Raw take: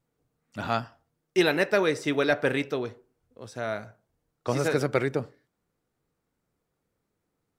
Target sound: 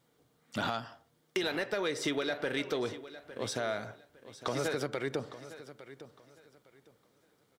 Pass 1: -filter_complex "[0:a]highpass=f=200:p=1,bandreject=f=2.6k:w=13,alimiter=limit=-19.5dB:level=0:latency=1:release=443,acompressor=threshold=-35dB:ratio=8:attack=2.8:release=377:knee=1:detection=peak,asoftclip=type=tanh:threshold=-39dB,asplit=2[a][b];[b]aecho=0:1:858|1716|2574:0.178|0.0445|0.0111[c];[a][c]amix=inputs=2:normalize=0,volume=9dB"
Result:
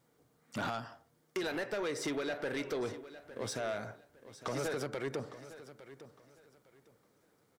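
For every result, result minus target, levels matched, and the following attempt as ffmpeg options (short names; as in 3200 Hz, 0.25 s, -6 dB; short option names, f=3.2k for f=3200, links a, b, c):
soft clip: distortion +10 dB; 4000 Hz band -3.5 dB
-filter_complex "[0:a]highpass=f=200:p=1,bandreject=f=2.6k:w=13,alimiter=limit=-19.5dB:level=0:latency=1:release=443,acompressor=threshold=-35dB:ratio=8:attack=2.8:release=377:knee=1:detection=peak,asoftclip=type=tanh:threshold=-29.5dB,asplit=2[a][b];[b]aecho=0:1:858|1716|2574:0.178|0.0445|0.0111[c];[a][c]amix=inputs=2:normalize=0,volume=9dB"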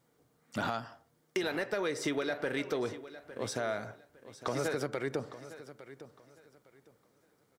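4000 Hz band -4.0 dB
-filter_complex "[0:a]highpass=f=200:p=1,bandreject=f=2.6k:w=13,alimiter=limit=-19.5dB:level=0:latency=1:release=443,acompressor=threshold=-35dB:ratio=8:attack=2.8:release=377:knee=1:detection=peak,equalizer=f=3.4k:t=o:w=0.75:g=6,asoftclip=type=tanh:threshold=-29.5dB,asplit=2[a][b];[b]aecho=0:1:858|1716|2574:0.178|0.0445|0.0111[c];[a][c]amix=inputs=2:normalize=0,volume=9dB"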